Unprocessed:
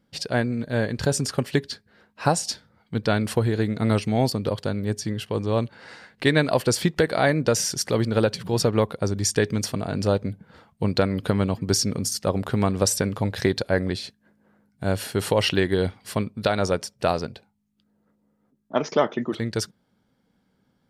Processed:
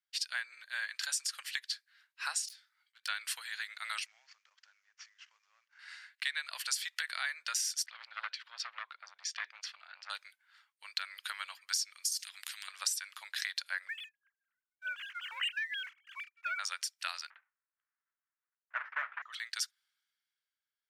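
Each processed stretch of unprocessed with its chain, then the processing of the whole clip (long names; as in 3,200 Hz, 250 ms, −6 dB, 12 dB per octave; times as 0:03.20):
0:02.48–0:03.08: phase distortion by the signal itself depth 0.091 ms + volume swells 189 ms + double-tracking delay 18 ms −8 dB
0:04.06–0:05.79: variable-slope delta modulation 32 kbit/s + parametric band 3,900 Hz −13 dB 1 octave + downward compressor, threshold −37 dBFS
0:07.86–0:10.10: high-frequency loss of the air 220 metres + saturating transformer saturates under 1,100 Hz
0:12.19–0:12.68: parametric band 690 Hz +14.5 dB 0.41 octaves + downward compressor 1.5 to 1, threshold −49 dBFS + every bin compressed towards the loudest bin 4 to 1
0:13.88–0:16.59: three sine waves on the formant tracks + high-pass filter 1,000 Hz + leveller curve on the samples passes 1
0:17.30–0:19.22: each half-wave held at its own peak + low-pass filter 1,700 Hz 24 dB per octave + de-essing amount 80%
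whole clip: inverse Chebyshev high-pass filter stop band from 340 Hz, stop band 70 dB; downward compressor 8 to 1, threshold −33 dBFS; multiband upward and downward expander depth 40%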